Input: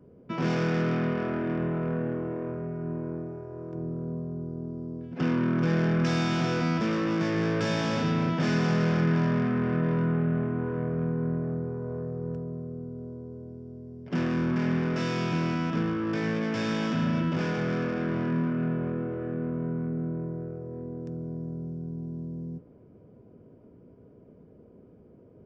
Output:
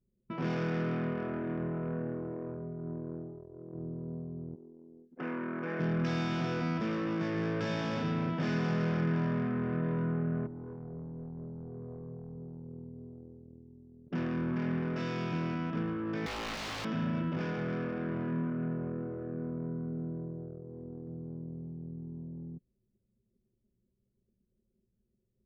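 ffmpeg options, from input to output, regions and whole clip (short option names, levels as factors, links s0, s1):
-filter_complex "[0:a]asettb=1/sr,asplit=3[s0][s1][s2];[s0]atrim=end=4.554[s3];[s1]atrim=start=4.55:end=5.8,asetpts=PTS-STARTPTS,afade=t=in:d=0.004:c=qsin,afade=t=out:st=1.246:d=0.004:c=qsin,highpass=320,highshelf=f=2900:t=q:w=1.5:g=-9[s4];[s2]atrim=start=5.796[s5];[s3][s4]acrossfade=d=0.004:c1=hsin:c2=qsin[s6];[s6][s5]acrossfade=d=0.004:c1=qsin:c2=hsin,asettb=1/sr,asplit=3[s7][s8][s9];[s7]atrim=end=10.464[s10];[s8]atrim=start=10.46:end=12.94,asetpts=PTS-STARTPTS,afade=t=in:d=0.004:c=qsin,afade=t=out:st=2.476:d=0.004:c=qsin,bandreject=f=560:w=5.1,acompressor=threshold=0.0251:ratio=2.5:attack=3.2:release=140:knee=1:detection=peak,volume=42.2,asoftclip=hard,volume=0.0237[s11];[s9]atrim=start=12.936[s12];[s10][s11]acrossfade=d=0.004:c1=hsin:c2=qsin[s13];[s13][s12]acrossfade=d=0.004:c1=qsin:c2=hsin,asettb=1/sr,asplit=3[s14][s15][s16];[s14]atrim=end=16.264[s17];[s15]atrim=start=16.26:end=16.85,asetpts=PTS-STARTPTS,afade=t=in:d=0.004:c=qsin,afade=t=out:st=0.586:d=0.004:c=qsin,highpass=f=79:w=0.5412,highpass=f=79:w=1.3066,highshelf=f=4000:g=8.5,aeval=exprs='(mod(20*val(0)+1,2)-1)/20':c=same[s18];[s16]atrim=start=16.846[s19];[s17][s18]acrossfade=d=0.004:c1=hsin:c2=qsin[s20];[s20][s19]acrossfade=d=0.004:c1=qsin:c2=hsin,anlmdn=3.98,acrossover=split=5600[s21][s22];[s22]acompressor=threshold=0.00178:ratio=4:attack=1:release=60[s23];[s21][s23]amix=inputs=2:normalize=0,volume=0.501"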